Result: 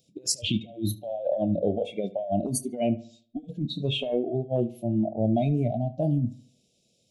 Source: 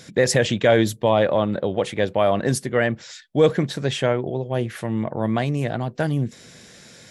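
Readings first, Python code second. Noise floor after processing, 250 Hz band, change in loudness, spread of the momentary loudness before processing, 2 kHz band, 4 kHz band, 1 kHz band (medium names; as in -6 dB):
-69 dBFS, -3.5 dB, -6.0 dB, 8 LU, -18.5 dB, -4.0 dB, -10.0 dB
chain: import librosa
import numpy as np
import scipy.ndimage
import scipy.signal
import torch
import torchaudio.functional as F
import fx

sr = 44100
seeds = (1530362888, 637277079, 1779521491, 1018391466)

y = scipy.signal.sosfilt(scipy.signal.ellip(3, 1.0, 40, [680.0, 2700.0], 'bandstop', fs=sr, output='sos'), x)
y = fx.chorus_voices(y, sr, voices=2, hz=1.5, base_ms=27, depth_ms=3.0, mix_pct=20)
y = fx.over_compress(y, sr, threshold_db=-24.0, ratio=-0.5)
y = fx.noise_reduce_blind(y, sr, reduce_db=22)
y = fx.echo_filtered(y, sr, ms=73, feedback_pct=38, hz=3500.0, wet_db=-17.0)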